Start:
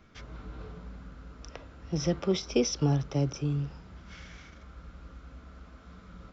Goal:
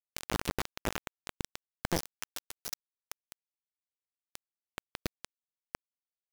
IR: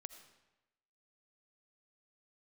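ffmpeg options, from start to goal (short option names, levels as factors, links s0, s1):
-filter_complex "[0:a]agate=range=0.0562:threshold=0.00355:ratio=16:detection=peak,acompressor=mode=upward:threshold=0.00794:ratio=2.5,aecho=1:1:90|180|270|360|450|540:0.188|0.111|0.0656|0.0387|0.0228|0.0135,alimiter=level_in=2.99:limit=0.0631:level=0:latency=1:release=183,volume=0.335,asettb=1/sr,asplit=3[s0][s1][s2];[s0]atrim=end=2.014[s3];[s1]atrim=start=2.01:end=4.26,asetpts=PTS-STARTPTS,afade=t=in:d=0.004:c=qsin,afade=t=out:st=2.246:d=0.004:c=qsin,highpass=f=540:w=0.5412,highpass=f=540:w=1.3066[s4];[s2]atrim=start=4.256[s5];[s3][s4]acrossfade=d=0.004:c1=hsin:c2=qsin[s6];[s6][s5]acrossfade=d=0.004:c1=qsin:c2=hsin,acrusher=bits=5:mix=0:aa=0.000001,volume=3.55"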